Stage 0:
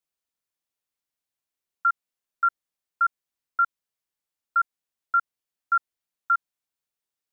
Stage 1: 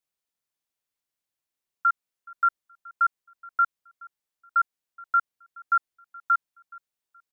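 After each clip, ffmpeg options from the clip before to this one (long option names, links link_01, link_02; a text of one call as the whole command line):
ffmpeg -i in.wav -af "aecho=1:1:423|846:0.0708|0.0191" out.wav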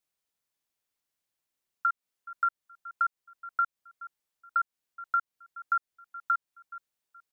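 ffmpeg -i in.wav -af "acompressor=threshold=-28dB:ratio=3,volume=1.5dB" out.wav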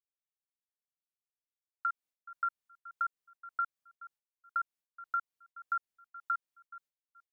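ffmpeg -i in.wav -af "agate=range=-33dB:threshold=-52dB:ratio=3:detection=peak,volume=-6dB" out.wav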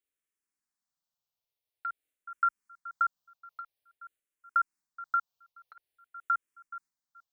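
ffmpeg -i in.wav -filter_complex "[0:a]asplit=2[link_01][link_02];[link_02]afreqshift=-0.49[link_03];[link_01][link_03]amix=inputs=2:normalize=1,volume=7dB" out.wav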